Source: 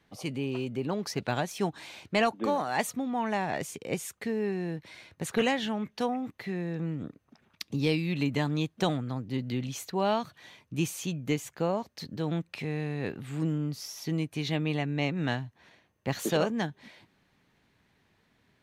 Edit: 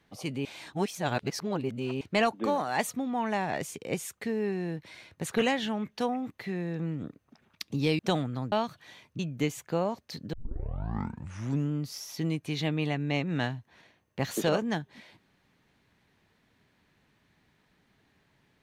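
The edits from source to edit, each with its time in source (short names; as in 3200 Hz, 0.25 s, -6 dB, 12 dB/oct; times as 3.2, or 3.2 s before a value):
0.45–2.01 reverse
7.99–8.73 cut
9.26–10.08 cut
10.75–11.07 cut
12.21 tape start 1.38 s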